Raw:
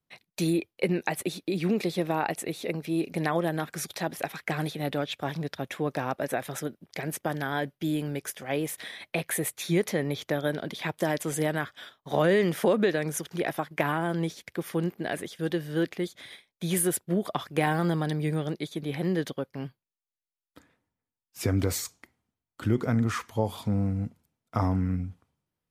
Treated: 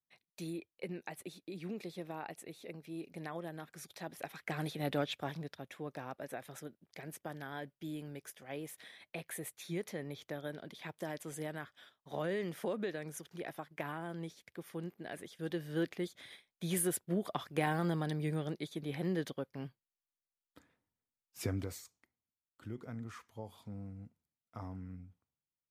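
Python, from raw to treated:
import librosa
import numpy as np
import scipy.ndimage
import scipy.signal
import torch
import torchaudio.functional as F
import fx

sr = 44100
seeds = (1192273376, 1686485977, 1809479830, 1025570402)

y = fx.gain(x, sr, db=fx.line((3.8, -16.0), (5.01, -4.0), (5.63, -14.0), (15.04, -14.0), (15.73, -7.5), (21.41, -7.5), (21.83, -19.0)))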